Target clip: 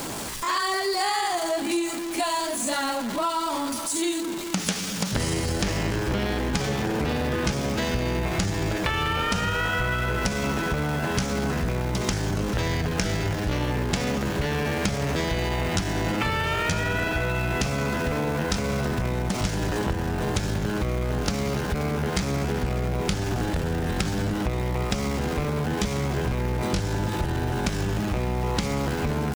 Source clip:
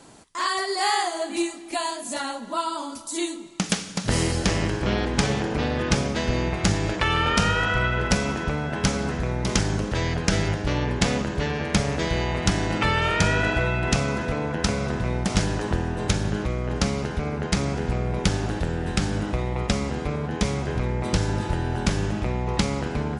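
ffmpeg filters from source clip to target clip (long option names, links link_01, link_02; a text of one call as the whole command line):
ffmpeg -i in.wav -af "aeval=exprs='val(0)+0.5*0.0376*sgn(val(0))':channel_layout=same,atempo=0.79,acompressor=threshold=-23dB:ratio=6,volume=1dB" out.wav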